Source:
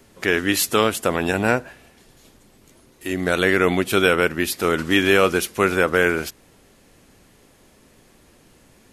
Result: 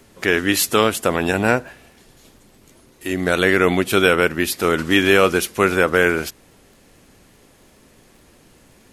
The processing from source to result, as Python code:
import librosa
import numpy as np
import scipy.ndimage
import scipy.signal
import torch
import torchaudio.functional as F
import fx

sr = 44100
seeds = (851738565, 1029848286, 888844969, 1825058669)

y = fx.dmg_crackle(x, sr, seeds[0], per_s=30.0, level_db=-45.0)
y = y * librosa.db_to_amplitude(2.0)